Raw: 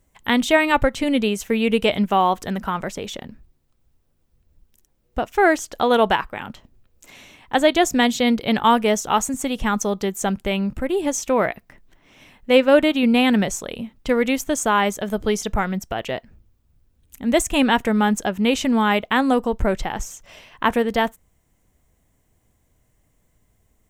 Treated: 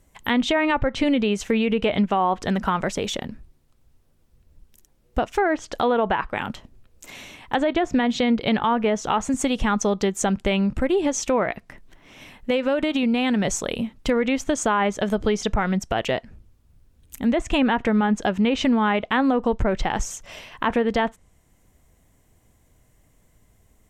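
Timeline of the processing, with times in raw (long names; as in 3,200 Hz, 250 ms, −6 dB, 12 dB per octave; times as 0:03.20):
0:11.43–0:13.45: downward compressor, threshold −20 dBFS
whole clip: treble cut that deepens with the level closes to 2,000 Hz, closed at −12.5 dBFS; brickwall limiter −12.5 dBFS; downward compressor 2 to 1, threshold −24 dBFS; level +4.5 dB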